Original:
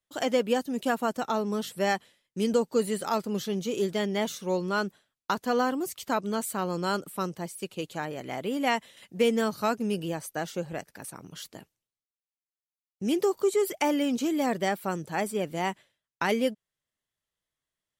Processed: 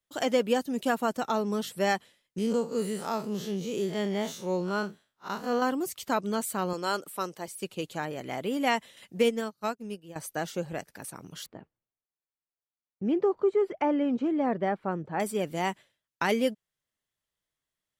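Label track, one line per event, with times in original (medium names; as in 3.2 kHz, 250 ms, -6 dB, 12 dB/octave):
2.380000	5.620000	spectral blur width 91 ms
6.730000	7.480000	tone controls bass -13 dB, treble +1 dB
9.230000	10.160000	upward expansion 2.5:1, over -43 dBFS
11.460000	15.200000	low-pass 1.5 kHz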